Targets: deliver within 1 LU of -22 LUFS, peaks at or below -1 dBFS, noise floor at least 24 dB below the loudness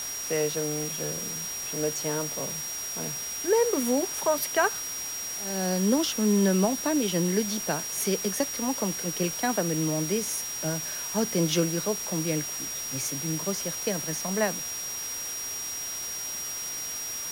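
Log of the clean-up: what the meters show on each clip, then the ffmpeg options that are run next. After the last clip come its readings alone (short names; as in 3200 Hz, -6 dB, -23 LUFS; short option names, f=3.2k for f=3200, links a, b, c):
steady tone 5700 Hz; tone level -33 dBFS; noise floor -34 dBFS; noise floor target -52 dBFS; loudness -27.5 LUFS; peak -11.0 dBFS; loudness target -22.0 LUFS
-> -af "bandreject=f=5.7k:w=30"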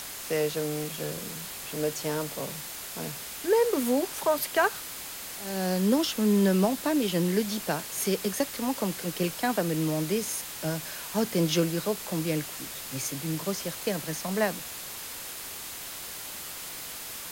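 steady tone none; noise floor -40 dBFS; noise floor target -53 dBFS
-> -af "afftdn=nr=13:nf=-40"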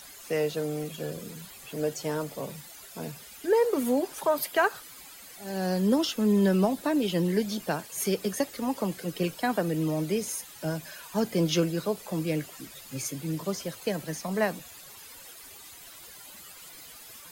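noise floor -48 dBFS; noise floor target -53 dBFS
-> -af "afftdn=nr=6:nf=-48"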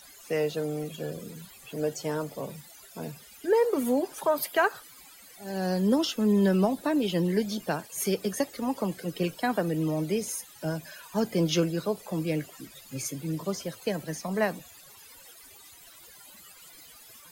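noise floor -52 dBFS; noise floor target -53 dBFS
-> -af "afftdn=nr=6:nf=-52"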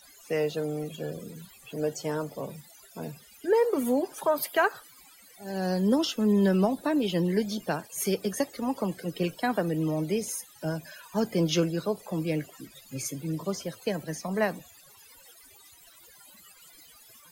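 noise floor -55 dBFS; loudness -29.0 LUFS; peak -11.0 dBFS; loudness target -22.0 LUFS
-> -af "volume=7dB"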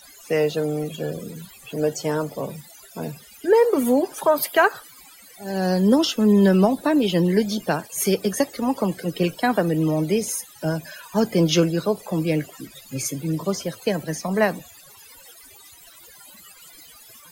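loudness -22.0 LUFS; peak -4.0 dBFS; noise floor -48 dBFS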